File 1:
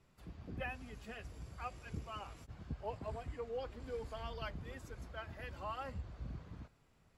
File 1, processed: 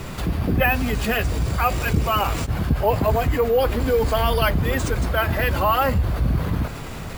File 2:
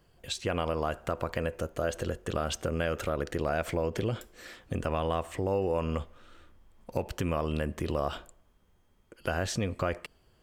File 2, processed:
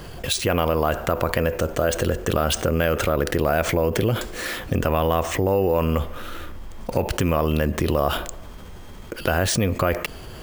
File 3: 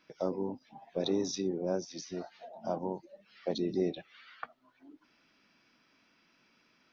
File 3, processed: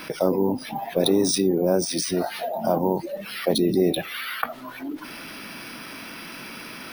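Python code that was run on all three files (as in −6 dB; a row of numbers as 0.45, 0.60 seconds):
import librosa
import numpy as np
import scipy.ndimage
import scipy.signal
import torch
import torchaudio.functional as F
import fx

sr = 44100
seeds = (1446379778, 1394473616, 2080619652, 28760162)

y = np.repeat(x[::3], 3)[:len(x)]
y = fx.env_flatten(y, sr, amount_pct=50)
y = librosa.util.normalize(y) * 10.0 ** (-6 / 20.0)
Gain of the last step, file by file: +22.0, +8.0, +9.5 decibels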